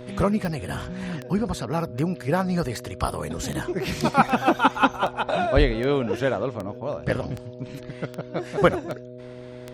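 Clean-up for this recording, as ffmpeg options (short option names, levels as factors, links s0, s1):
-af "adeclick=t=4,bandreject=f=124:t=h:w=4,bandreject=f=248:t=h:w=4,bandreject=f=372:t=h:w=4,bandreject=f=496:t=h:w=4,bandreject=f=620:t=h:w=4"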